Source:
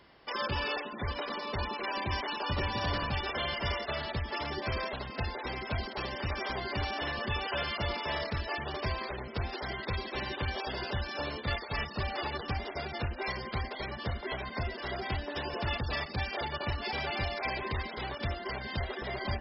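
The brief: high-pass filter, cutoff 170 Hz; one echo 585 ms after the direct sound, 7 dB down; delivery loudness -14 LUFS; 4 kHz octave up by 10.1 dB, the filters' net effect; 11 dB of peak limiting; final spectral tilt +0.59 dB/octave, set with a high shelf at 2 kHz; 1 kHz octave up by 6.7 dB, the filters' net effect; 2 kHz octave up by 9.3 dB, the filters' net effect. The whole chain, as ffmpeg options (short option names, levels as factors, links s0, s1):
-af "highpass=170,equalizer=f=1000:t=o:g=5.5,highshelf=f=2000:g=4.5,equalizer=f=2000:t=o:g=5.5,equalizer=f=4000:t=o:g=6.5,alimiter=limit=0.0631:level=0:latency=1,aecho=1:1:585:0.447,volume=7.08"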